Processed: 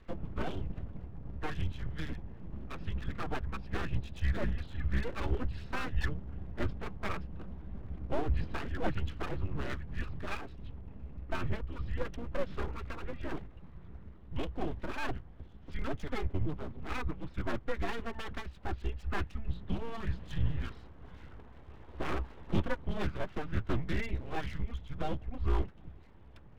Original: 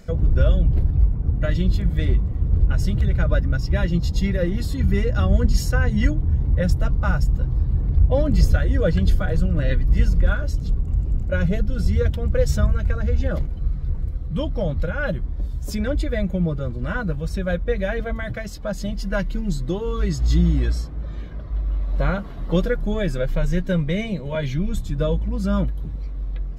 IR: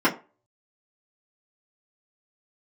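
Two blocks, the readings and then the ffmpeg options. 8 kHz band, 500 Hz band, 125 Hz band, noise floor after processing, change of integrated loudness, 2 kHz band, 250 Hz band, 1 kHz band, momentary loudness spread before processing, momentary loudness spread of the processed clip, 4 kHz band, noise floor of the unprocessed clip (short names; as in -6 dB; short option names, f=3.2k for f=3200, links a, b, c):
n/a, -15.0 dB, -17.0 dB, -53 dBFS, -16.0 dB, -11.0 dB, -15.5 dB, -6.5 dB, 9 LU, 13 LU, -11.5 dB, -30 dBFS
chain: -af "highpass=f=160:t=q:w=0.5412,highpass=f=160:t=q:w=1.307,lowpass=f=3.4k:t=q:w=0.5176,lowpass=f=3.4k:t=q:w=0.7071,lowpass=f=3.4k:t=q:w=1.932,afreqshift=-230,aeval=exprs='abs(val(0))':c=same,equalizer=f=64:w=2.5:g=13,volume=-7dB"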